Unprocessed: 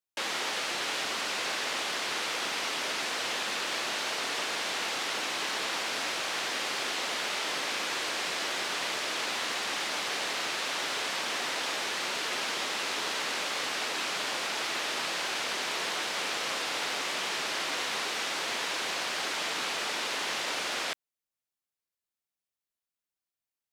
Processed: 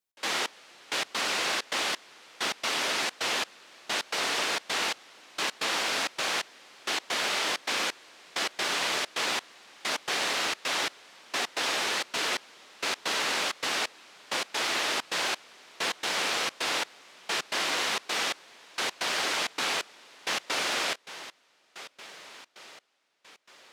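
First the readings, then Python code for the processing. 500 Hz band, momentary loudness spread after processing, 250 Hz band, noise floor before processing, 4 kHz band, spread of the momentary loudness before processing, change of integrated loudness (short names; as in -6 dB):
+1.0 dB, 12 LU, +1.0 dB, under -85 dBFS, +1.0 dB, 0 LU, +1.5 dB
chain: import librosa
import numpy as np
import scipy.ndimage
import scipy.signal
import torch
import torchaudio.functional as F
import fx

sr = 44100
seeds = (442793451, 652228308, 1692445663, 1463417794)

y = fx.echo_diffused(x, sr, ms=1025, feedback_pct=49, wet_db=-14)
y = fx.step_gate(y, sr, bpm=131, pattern='x.xx....x.xxx', floor_db=-24.0, edge_ms=4.5)
y = F.gain(torch.from_numpy(y), 3.5).numpy()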